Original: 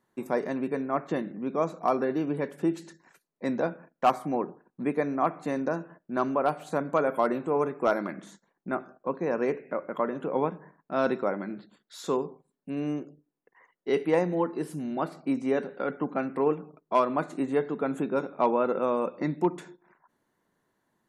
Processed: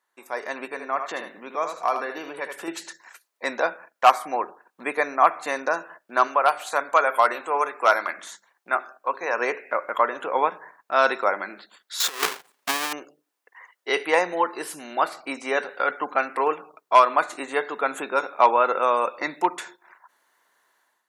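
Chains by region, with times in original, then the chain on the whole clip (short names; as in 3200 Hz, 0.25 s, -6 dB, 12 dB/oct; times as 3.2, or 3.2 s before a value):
0.65–2.68 compressor 1.5:1, threshold -38 dBFS + echo 79 ms -7.5 dB
6.27–9.37 low shelf 410 Hz -6.5 dB + notches 50/100/150/200/250/300/350/400 Hz
12–12.93 half-waves squared off + negative-ratio compressor -30 dBFS, ratio -0.5
whole clip: HPF 950 Hz 12 dB/oct; AGC gain up to 12 dB; gain +1.5 dB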